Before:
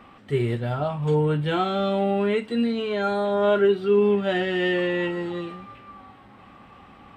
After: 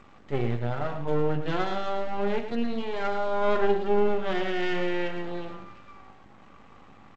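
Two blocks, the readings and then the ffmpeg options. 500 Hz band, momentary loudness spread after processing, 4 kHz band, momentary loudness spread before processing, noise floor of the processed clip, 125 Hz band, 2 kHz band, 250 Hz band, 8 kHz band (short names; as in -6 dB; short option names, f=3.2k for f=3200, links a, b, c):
-5.5 dB, 10 LU, -6.0 dB, 9 LU, -52 dBFS, -6.5 dB, -4.5 dB, -6.5 dB, n/a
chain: -filter_complex "[0:a]aeval=exprs='val(0)+0.00178*(sin(2*PI*50*n/s)+sin(2*PI*2*50*n/s)/2+sin(2*PI*3*50*n/s)/3+sin(2*PI*4*50*n/s)/4+sin(2*PI*5*50*n/s)/5)':c=same,aeval=exprs='max(val(0),0)':c=same,highshelf=f=2.7k:g=-7,bandreject=f=49.27:t=h:w=4,bandreject=f=98.54:t=h:w=4,bandreject=f=147.81:t=h:w=4,bandreject=f=197.08:t=h:w=4,bandreject=f=246.35:t=h:w=4,bandreject=f=295.62:t=h:w=4,bandreject=f=344.89:t=h:w=4,bandreject=f=394.16:t=h:w=4,bandreject=f=443.43:t=h:w=4,bandreject=f=492.7:t=h:w=4,bandreject=f=541.97:t=h:w=4,bandreject=f=591.24:t=h:w=4,bandreject=f=640.51:t=h:w=4,bandreject=f=689.78:t=h:w=4,bandreject=f=739.05:t=h:w=4,bandreject=f=788.32:t=h:w=4,bandreject=f=837.59:t=h:w=4,bandreject=f=886.86:t=h:w=4,bandreject=f=936.13:t=h:w=4,bandreject=f=985.4:t=h:w=4,bandreject=f=1.03467k:t=h:w=4,bandreject=f=1.08394k:t=h:w=4,bandreject=f=1.13321k:t=h:w=4,bandreject=f=1.18248k:t=h:w=4,asplit=2[a][b];[b]aecho=0:1:110:0.335[c];[a][c]amix=inputs=2:normalize=0" -ar 16000 -c:a g722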